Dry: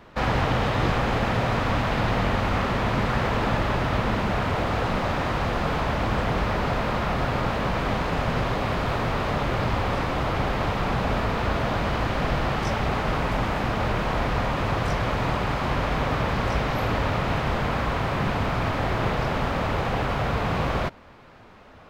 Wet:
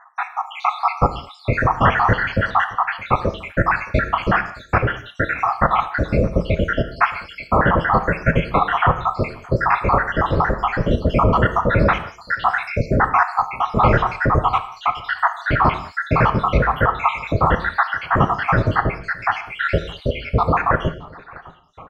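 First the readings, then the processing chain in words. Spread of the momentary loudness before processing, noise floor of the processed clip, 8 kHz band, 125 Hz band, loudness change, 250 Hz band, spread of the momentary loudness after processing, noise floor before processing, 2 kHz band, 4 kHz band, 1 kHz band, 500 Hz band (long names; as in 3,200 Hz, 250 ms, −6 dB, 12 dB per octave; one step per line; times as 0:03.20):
2 LU, −43 dBFS, can't be measured, +4.0 dB, +6.0 dB, +3.0 dB, 7 LU, −48 dBFS, +7.5 dB, −1.5 dB, +8.0 dB, +4.5 dB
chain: time-frequency cells dropped at random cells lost 84%
low-pass filter 2,000 Hz 6 dB per octave
parametric band 1,400 Hz +10.5 dB 1.2 octaves
automatic gain control gain up to 11.5 dB
single-tap delay 620 ms −24 dB
reverb whose tail is shaped and stops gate 240 ms falling, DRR 8.5 dB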